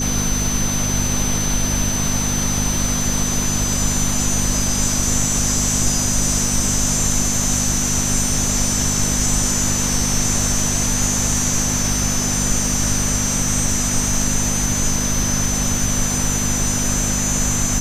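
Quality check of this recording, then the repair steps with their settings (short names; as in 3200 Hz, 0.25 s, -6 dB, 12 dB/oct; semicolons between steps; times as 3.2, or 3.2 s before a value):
hum 50 Hz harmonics 5 -24 dBFS
tone 6100 Hz -22 dBFS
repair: de-hum 50 Hz, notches 5; notch 6100 Hz, Q 30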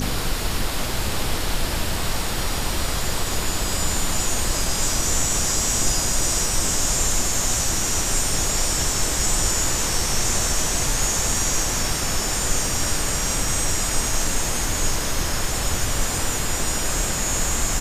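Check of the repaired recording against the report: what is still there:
none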